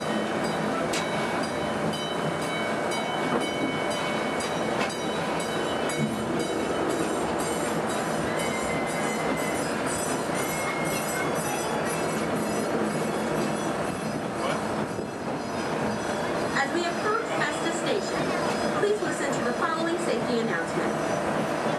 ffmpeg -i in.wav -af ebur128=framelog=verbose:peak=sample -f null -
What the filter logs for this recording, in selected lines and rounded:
Integrated loudness:
  I:         -27.2 LUFS
  Threshold: -37.2 LUFS
Loudness range:
  LRA:         1.9 LU
  Threshold: -47.2 LUFS
  LRA low:   -28.1 LUFS
  LRA high:  -26.3 LUFS
Sample peak:
  Peak:      -11.8 dBFS